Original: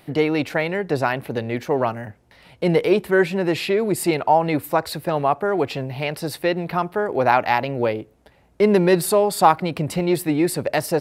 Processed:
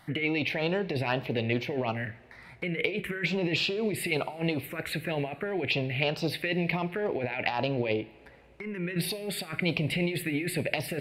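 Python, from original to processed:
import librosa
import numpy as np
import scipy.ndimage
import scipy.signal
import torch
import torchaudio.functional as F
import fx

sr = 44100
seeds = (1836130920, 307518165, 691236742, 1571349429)

y = fx.over_compress(x, sr, threshold_db=-23.0, ratio=-1.0)
y = fx.peak_eq(y, sr, hz=2300.0, db=13.5, octaves=1.1)
y = fx.env_phaser(y, sr, low_hz=410.0, high_hz=2100.0, full_db=-14.5)
y = fx.high_shelf(y, sr, hz=12000.0, db=-9.5)
y = fx.rev_double_slope(y, sr, seeds[0], early_s=0.44, late_s=3.1, knee_db=-17, drr_db=13.0)
y = y * 10.0 ** (-6.5 / 20.0)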